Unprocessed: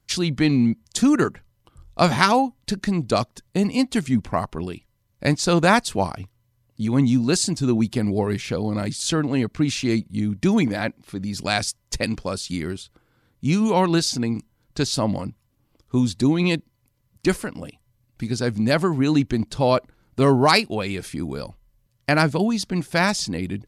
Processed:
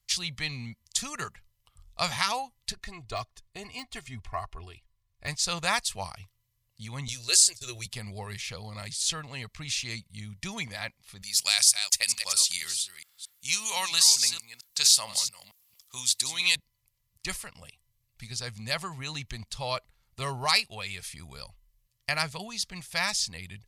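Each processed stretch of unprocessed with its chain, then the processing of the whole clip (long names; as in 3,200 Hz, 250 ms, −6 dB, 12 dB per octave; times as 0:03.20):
0:02.72–0:05.28: de-essing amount 60% + high-shelf EQ 3,000 Hz −11.5 dB + comb filter 2.8 ms, depth 68%
0:07.08–0:07.86: noise gate −28 dBFS, range −24 dB + drawn EQ curve 110 Hz 0 dB, 170 Hz −28 dB, 360 Hz +4 dB, 590 Hz +3 dB, 840 Hz −10 dB, 1,600 Hz +3 dB, 2,300 Hz +3 dB, 3,500 Hz +6 dB, 10,000 Hz +12 dB
0:11.22–0:16.56: delay that plays each chunk backwards 226 ms, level −10 dB + spectral tilt +4.5 dB per octave
whole clip: guitar amp tone stack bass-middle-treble 10-0-10; notch filter 1,500 Hz, Q 6.8; boost into a limiter +6.5 dB; level −7 dB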